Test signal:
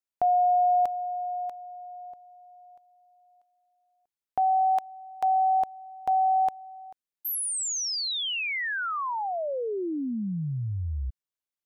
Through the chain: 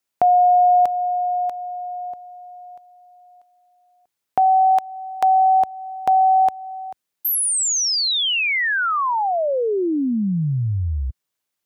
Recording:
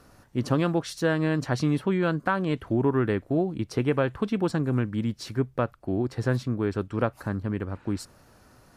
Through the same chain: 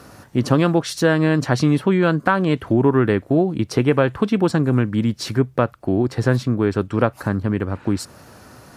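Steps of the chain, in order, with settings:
high-pass filter 74 Hz 12 dB per octave
in parallel at +0.5 dB: downward compressor, threshold −35 dBFS
on the sum: level +6 dB

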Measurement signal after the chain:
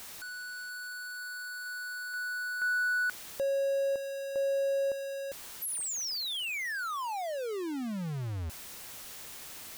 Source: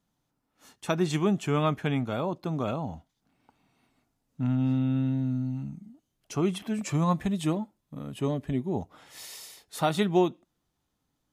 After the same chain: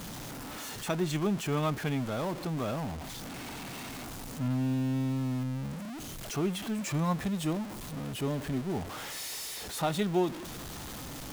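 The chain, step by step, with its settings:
converter with a step at zero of −29 dBFS
level −6 dB

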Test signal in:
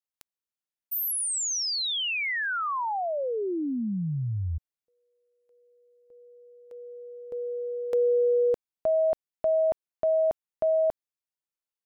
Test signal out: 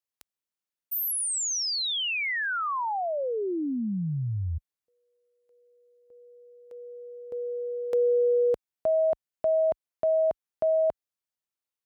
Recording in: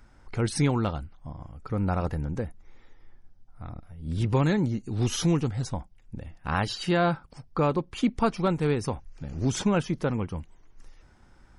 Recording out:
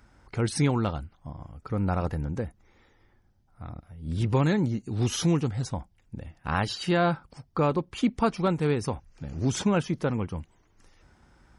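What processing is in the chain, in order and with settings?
high-pass filter 41 Hz 12 dB per octave

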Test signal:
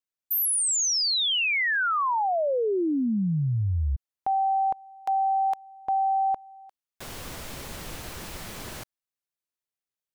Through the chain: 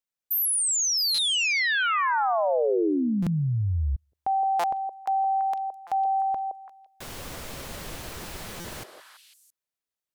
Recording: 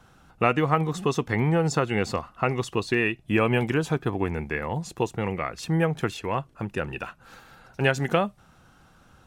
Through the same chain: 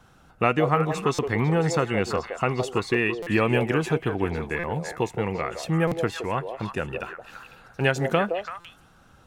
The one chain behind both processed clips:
echo through a band-pass that steps 167 ms, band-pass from 530 Hz, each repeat 1.4 octaves, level −3 dB
buffer that repeats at 0:01.14/0:03.22/0:04.59/0:05.87/0:08.60, samples 256, times 7

